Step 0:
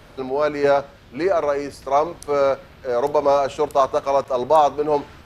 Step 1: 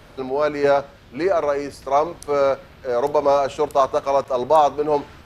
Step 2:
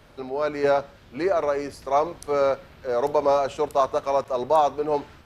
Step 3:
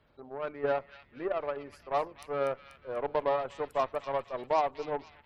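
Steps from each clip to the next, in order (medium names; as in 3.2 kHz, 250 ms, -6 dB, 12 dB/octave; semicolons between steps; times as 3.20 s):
no audible change
level rider gain up to 4.5 dB; trim -6.5 dB
spectral gate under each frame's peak -25 dB strong; Chebyshev shaper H 3 -18 dB, 5 -28 dB, 7 -24 dB, 8 -33 dB, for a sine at -8.5 dBFS; feedback echo behind a high-pass 243 ms, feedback 47%, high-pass 2.7 kHz, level -5 dB; trim -6.5 dB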